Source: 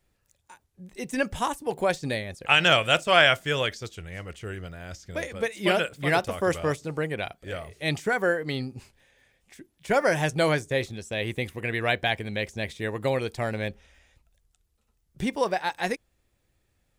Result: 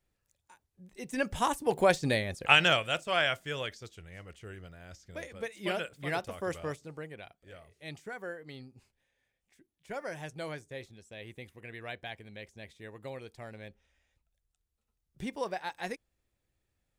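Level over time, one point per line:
0:00.96 −8.5 dB
0:01.59 +0.5 dB
0:02.45 +0.5 dB
0:02.88 −10 dB
0:06.65 −10 dB
0:07.25 −16.5 dB
0:13.69 −16.5 dB
0:15.33 −9.5 dB

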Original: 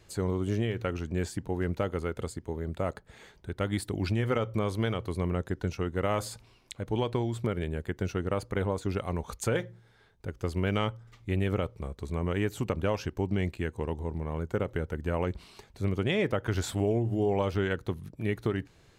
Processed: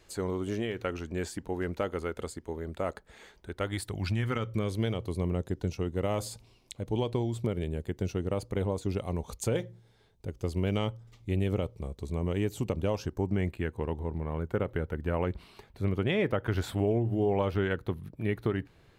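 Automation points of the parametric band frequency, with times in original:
parametric band −9.5 dB 1.1 octaves
0:03.52 120 Hz
0:04.10 410 Hz
0:04.99 1,500 Hz
0:12.87 1,500 Hz
0:13.64 6,800 Hz

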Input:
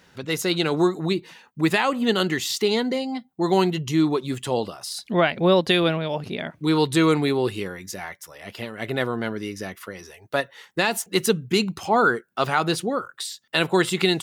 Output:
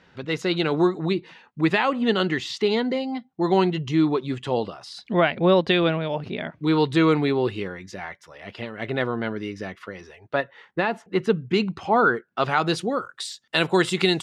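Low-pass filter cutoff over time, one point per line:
0:09.99 3,600 Hz
0:11.07 1,600 Hz
0:11.55 3,000 Hz
0:12.27 3,000 Hz
0:12.88 7,800 Hz

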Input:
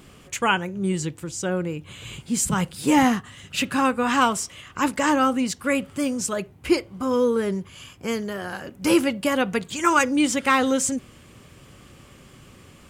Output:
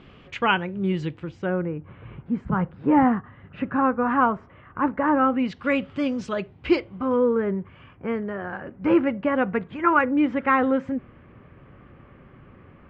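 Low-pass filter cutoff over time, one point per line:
low-pass filter 24 dB per octave
0:01.13 3,500 Hz
0:01.81 1,600 Hz
0:05.13 1,600 Hz
0:05.62 3,800 Hz
0:06.78 3,800 Hz
0:07.21 2,000 Hz

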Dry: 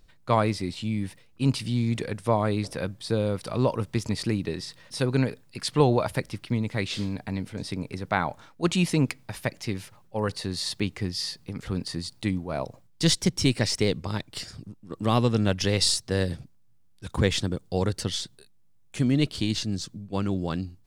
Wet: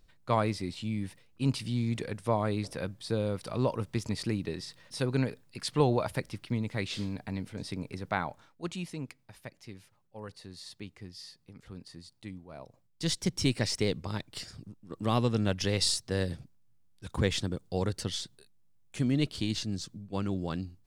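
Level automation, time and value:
0:08.09 −5 dB
0:08.94 −16 dB
0:12.61 −16 dB
0:13.36 −5 dB

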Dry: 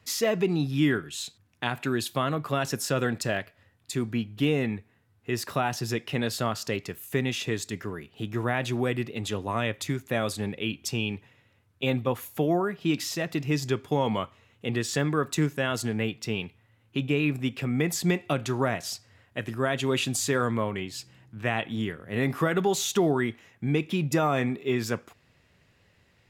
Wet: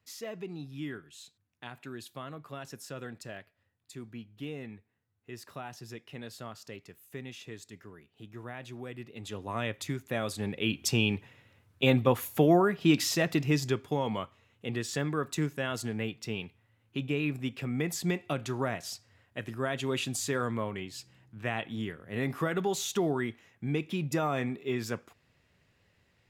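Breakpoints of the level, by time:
0:08.88 −15 dB
0:09.61 −5 dB
0:10.30 −5 dB
0:10.80 +2.5 dB
0:13.25 +2.5 dB
0:14.02 −5.5 dB

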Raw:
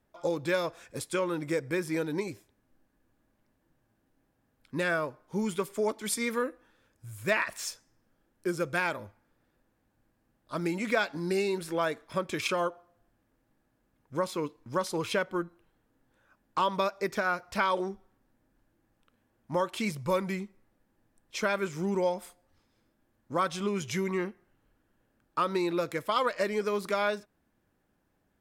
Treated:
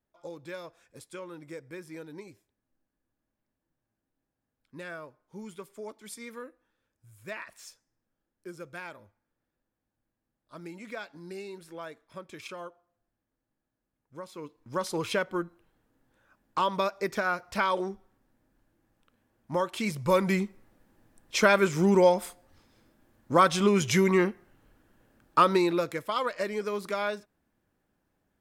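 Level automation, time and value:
0:14.26 −12 dB
0:14.87 +0.5 dB
0:19.83 +0.5 dB
0:20.39 +8 dB
0:25.41 +8 dB
0:26.05 −2 dB

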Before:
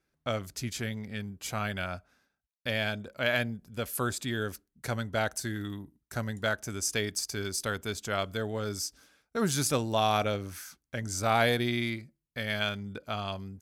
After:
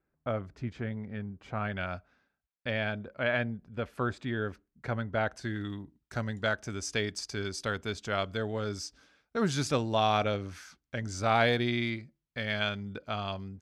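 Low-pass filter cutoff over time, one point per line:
0:01.55 1,500 Hz
0:01.94 3,800 Hz
0:02.99 2,200 Hz
0:05.20 2,200 Hz
0:05.69 4,800 Hz

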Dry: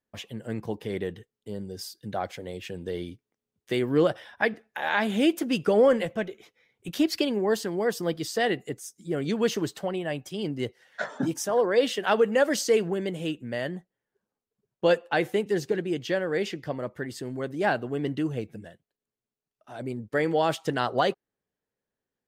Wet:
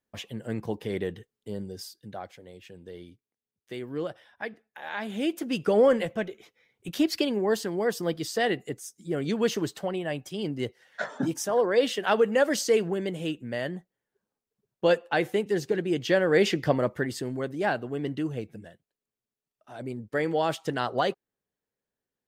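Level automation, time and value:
0:01.61 +0.5 dB
0:02.36 −10.5 dB
0:04.81 −10.5 dB
0:05.75 −0.5 dB
0:15.67 −0.5 dB
0:16.65 +9 dB
0:17.67 −2 dB

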